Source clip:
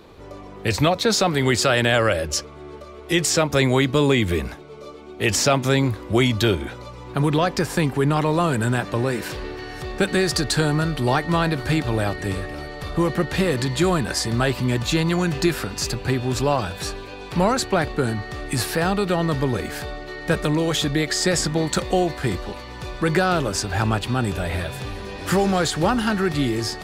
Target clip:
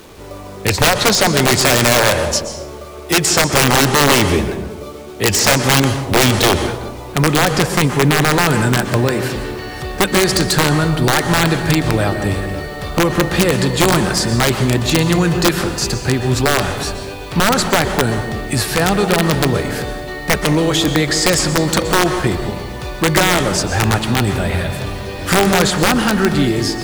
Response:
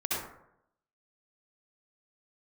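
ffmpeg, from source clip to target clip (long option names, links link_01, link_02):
-filter_complex "[0:a]acrusher=bits=7:mix=0:aa=0.000001,aeval=exprs='(mod(3.55*val(0)+1,2)-1)/3.55':channel_layout=same,asplit=2[link_01][link_02];[1:a]atrim=start_sample=2205,asetrate=22932,aresample=44100[link_03];[link_02][link_03]afir=irnorm=-1:irlink=0,volume=-17.5dB[link_04];[link_01][link_04]amix=inputs=2:normalize=0,volume=4.5dB"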